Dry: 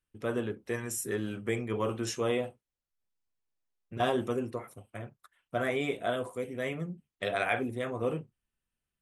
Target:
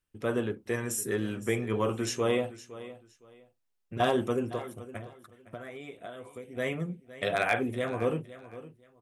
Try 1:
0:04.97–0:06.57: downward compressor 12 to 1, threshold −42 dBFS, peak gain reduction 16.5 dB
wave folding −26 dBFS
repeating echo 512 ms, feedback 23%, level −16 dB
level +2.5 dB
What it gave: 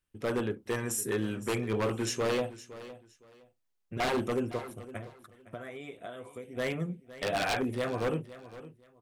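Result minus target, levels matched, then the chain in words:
wave folding: distortion +27 dB
0:04.97–0:06.57: downward compressor 12 to 1, threshold −42 dBFS, peak gain reduction 16.5 dB
wave folding −17 dBFS
repeating echo 512 ms, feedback 23%, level −16 dB
level +2.5 dB

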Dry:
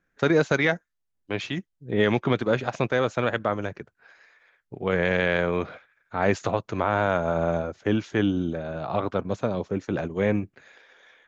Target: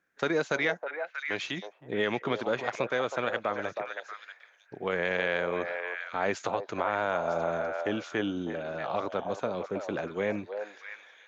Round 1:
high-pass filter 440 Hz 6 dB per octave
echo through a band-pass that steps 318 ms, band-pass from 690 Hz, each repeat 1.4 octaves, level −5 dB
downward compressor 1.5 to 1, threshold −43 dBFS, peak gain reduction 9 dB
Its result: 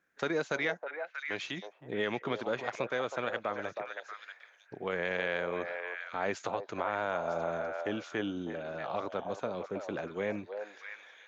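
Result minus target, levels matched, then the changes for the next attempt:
downward compressor: peak gain reduction +4 dB
change: downward compressor 1.5 to 1, threshold −31 dBFS, peak gain reduction 5 dB

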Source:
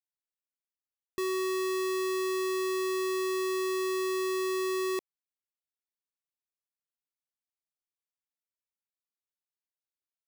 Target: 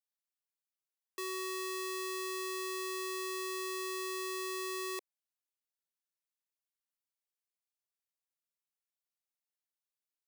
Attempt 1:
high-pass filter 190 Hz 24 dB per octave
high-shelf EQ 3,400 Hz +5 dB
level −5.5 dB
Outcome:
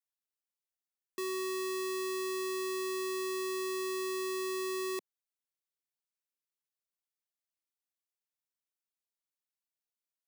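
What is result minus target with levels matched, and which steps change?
250 Hz band +3.0 dB
change: high-pass filter 420 Hz 24 dB per octave

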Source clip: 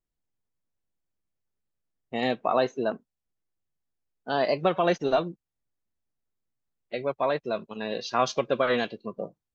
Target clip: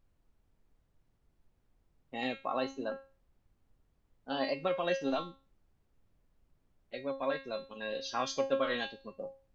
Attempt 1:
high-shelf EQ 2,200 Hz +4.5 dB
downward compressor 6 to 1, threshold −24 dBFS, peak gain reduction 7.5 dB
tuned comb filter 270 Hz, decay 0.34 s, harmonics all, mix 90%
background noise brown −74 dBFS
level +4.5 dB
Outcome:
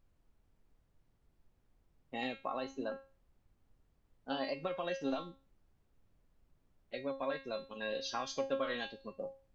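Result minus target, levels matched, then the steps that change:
downward compressor: peak gain reduction +7.5 dB
remove: downward compressor 6 to 1, threshold −24 dBFS, peak gain reduction 7.5 dB

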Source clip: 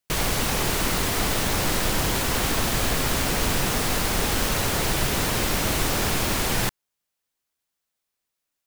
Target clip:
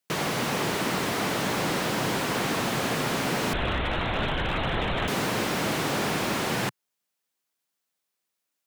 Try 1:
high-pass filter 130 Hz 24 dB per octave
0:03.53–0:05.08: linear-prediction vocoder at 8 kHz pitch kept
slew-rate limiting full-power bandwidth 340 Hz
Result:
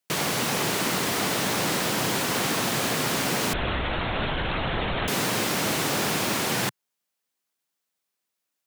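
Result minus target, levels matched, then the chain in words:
slew-rate limiting: distortion −8 dB
high-pass filter 130 Hz 24 dB per octave
0:03.53–0:05.08: linear-prediction vocoder at 8 kHz pitch kept
slew-rate limiting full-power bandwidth 123.5 Hz

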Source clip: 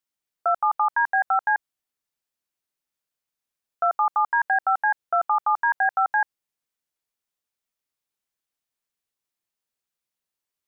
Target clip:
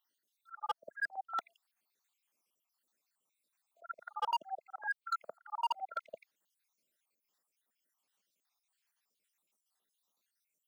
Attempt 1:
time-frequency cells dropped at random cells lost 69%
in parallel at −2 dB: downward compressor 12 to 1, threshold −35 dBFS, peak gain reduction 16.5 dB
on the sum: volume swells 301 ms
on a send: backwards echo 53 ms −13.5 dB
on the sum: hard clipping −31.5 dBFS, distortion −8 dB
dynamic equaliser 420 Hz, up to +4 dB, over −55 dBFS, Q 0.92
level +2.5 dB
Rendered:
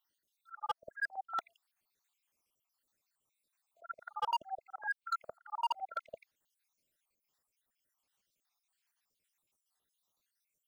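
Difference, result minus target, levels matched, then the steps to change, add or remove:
125 Hz band +7.0 dB
add after dynamic equaliser: high-pass filter 170 Hz 24 dB per octave

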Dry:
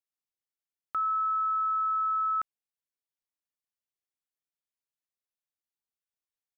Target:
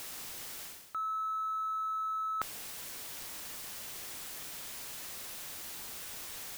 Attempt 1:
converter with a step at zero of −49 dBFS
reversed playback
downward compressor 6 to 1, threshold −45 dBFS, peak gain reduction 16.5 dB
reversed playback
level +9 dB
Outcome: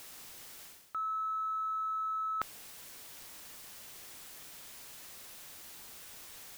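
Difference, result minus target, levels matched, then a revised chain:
converter with a step at zero: distortion −6 dB
converter with a step at zero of −42.5 dBFS
reversed playback
downward compressor 6 to 1, threshold −45 dBFS, peak gain reduction 16.5 dB
reversed playback
level +9 dB

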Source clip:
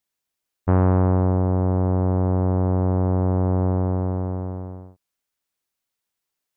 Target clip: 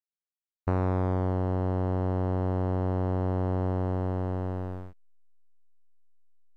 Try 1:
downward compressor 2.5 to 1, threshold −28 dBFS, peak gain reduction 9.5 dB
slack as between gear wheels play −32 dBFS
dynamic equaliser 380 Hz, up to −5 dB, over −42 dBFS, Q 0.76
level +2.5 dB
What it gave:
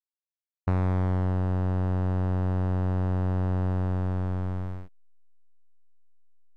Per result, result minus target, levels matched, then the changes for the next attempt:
500 Hz band −5.5 dB; slack as between gear wheels: distortion +8 dB
change: dynamic equaliser 140 Hz, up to −5 dB, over −42 dBFS, Q 0.76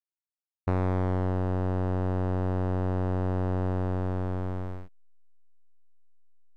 slack as between gear wheels: distortion +8 dB
change: slack as between gear wheels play −39.5 dBFS

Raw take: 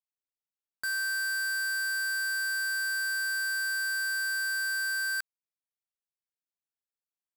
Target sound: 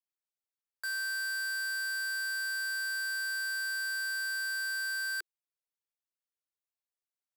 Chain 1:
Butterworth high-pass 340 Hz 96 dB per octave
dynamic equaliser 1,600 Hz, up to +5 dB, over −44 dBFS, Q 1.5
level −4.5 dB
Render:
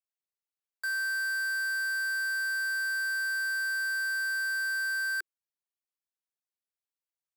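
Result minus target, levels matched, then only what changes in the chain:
4,000 Hz band −5.0 dB
change: dynamic equaliser 3,300 Hz, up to +5 dB, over −44 dBFS, Q 1.5

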